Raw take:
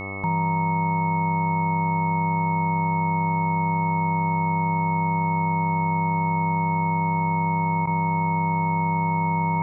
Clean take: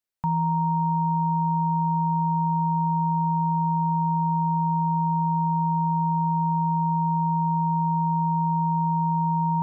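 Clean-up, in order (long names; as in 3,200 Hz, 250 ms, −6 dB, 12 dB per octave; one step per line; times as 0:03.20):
hum removal 97.9 Hz, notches 13
notch filter 2,200 Hz, Q 30
repair the gap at 0:07.86, 11 ms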